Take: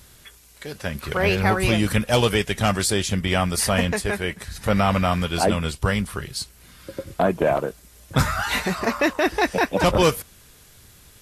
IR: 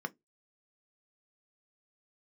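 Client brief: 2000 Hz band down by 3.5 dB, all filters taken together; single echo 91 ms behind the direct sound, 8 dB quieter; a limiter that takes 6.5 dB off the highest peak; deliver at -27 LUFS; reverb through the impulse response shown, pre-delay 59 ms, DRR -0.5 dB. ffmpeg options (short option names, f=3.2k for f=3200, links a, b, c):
-filter_complex "[0:a]equalizer=f=2k:t=o:g=-4.5,alimiter=limit=-14.5dB:level=0:latency=1,aecho=1:1:91:0.398,asplit=2[a][b];[1:a]atrim=start_sample=2205,adelay=59[c];[b][c]afir=irnorm=-1:irlink=0,volume=-2dB[d];[a][d]amix=inputs=2:normalize=0,volume=-4.5dB"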